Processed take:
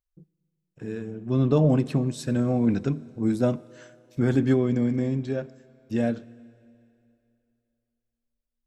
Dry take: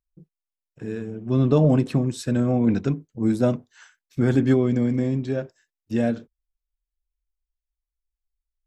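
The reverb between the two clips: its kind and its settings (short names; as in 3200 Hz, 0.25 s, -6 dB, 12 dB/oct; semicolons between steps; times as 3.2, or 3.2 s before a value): Schroeder reverb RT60 2.7 s, combs from 26 ms, DRR 19.5 dB; gain -2.5 dB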